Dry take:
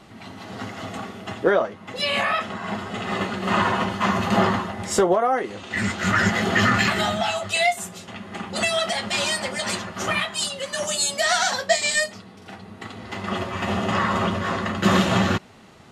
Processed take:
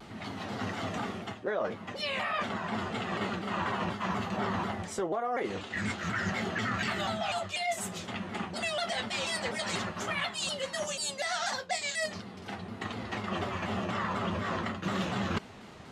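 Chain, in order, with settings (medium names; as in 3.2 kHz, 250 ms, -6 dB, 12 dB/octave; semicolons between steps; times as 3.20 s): reverse; compression 6:1, threshold -30 dBFS, peak gain reduction 16 dB; reverse; peaking EQ 12 kHz -5.5 dB 1.1 oct; vibrato with a chosen wave saw down 4.1 Hz, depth 160 cents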